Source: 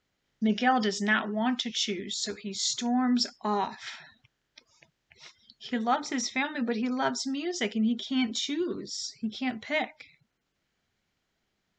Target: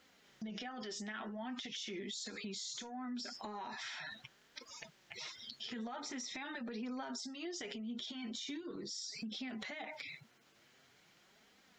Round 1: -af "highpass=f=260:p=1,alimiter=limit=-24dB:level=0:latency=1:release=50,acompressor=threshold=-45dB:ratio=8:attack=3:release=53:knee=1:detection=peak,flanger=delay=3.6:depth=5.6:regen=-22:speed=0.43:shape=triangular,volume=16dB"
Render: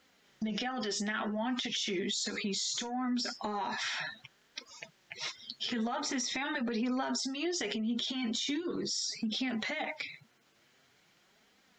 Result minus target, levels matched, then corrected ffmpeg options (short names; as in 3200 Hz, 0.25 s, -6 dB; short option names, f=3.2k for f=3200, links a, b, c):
compressor: peak gain reduction -9.5 dB
-af "highpass=f=260:p=1,alimiter=limit=-24dB:level=0:latency=1:release=50,acompressor=threshold=-56dB:ratio=8:attack=3:release=53:knee=1:detection=peak,flanger=delay=3.6:depth=5.6:regen=-22:speed=0.43:shape=triangular,volume=16dB"